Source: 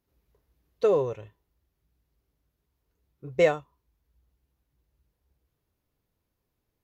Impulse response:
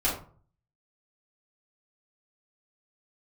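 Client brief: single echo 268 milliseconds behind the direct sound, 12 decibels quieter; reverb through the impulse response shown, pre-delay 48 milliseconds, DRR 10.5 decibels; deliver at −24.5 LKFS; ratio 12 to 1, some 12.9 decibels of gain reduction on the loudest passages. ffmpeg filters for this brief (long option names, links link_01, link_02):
-filter_complex "[0:a]acompressor=threshold=-29dB:ratio=12,aecho=1:1:268:0.251,asplit=2[link_01][link_02];[1:a]atrim=start_sample=2205,adelay=48[link_03];[link_02][link_03]afir=irnorm=-1:irlink=0,volume=-21dB[link_04];[link_01][link_04]amix=inputs=2:normalize=0,volume=13dB"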